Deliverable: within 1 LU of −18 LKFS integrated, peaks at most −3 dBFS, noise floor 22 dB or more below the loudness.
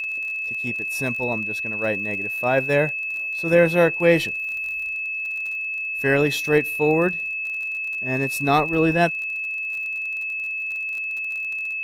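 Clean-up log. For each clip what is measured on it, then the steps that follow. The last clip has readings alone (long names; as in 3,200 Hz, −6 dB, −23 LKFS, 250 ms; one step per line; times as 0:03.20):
crackle rate 34 per second; interfering tone 2,600 Hz; level of the tone −25 dBFS; integrated loudness −22.0 LKFS; sample peak −4.5 dBFS; target loudness −18.0 LKFS
→ click removal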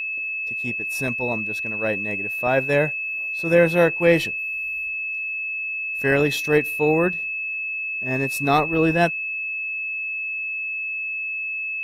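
crackle rate 0 per second; interfering tone 2,600 Hz; level of the tone −25 dBFS
→ notch filter 2,600 Hz, Q 30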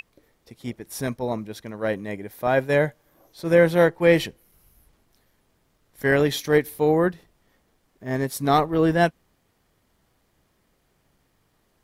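interfering tone none found; integrated loudness −22.5 LKFS; sample peak −5.0 dBFS; target loudness −18.0 LKFS
→ level +4.5 dB
brickwall limiter −3 dBFS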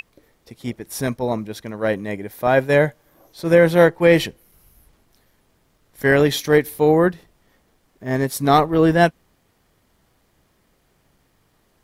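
integrated loudness −18.0 LKFS; sample peak −3.0 dBFS; background noise floor −63 dBFS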